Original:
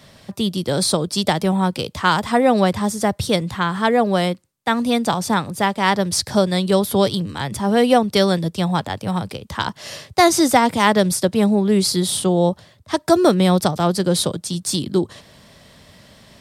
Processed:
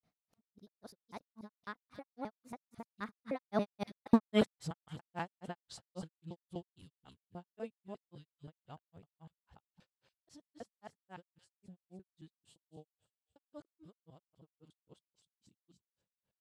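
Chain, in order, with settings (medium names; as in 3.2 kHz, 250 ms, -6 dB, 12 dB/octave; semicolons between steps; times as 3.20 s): time reversed locally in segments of 96 ms; Doppler pass-by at 4.09 s, 45 m/s, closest 5.5 m; treble shelf 2.9 kHz -10.5 dB; feedback echo behind a high-pass 206 ms, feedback 42%, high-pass 2.8 kHz, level -6 dB; granulator 148 ms, grains 3.7 per s, pitch spread up and down by 0 st; trim +1.5 dB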